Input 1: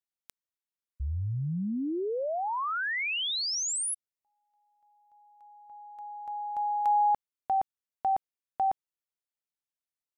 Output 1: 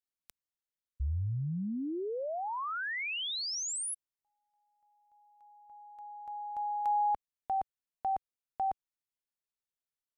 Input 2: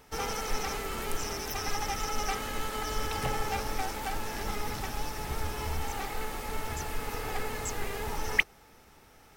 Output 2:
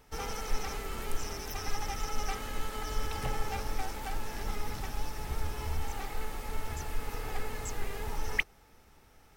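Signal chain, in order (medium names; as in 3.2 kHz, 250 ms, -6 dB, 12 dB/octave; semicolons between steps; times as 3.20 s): bass shelf 87 Hz +8 dB; trim -5 dB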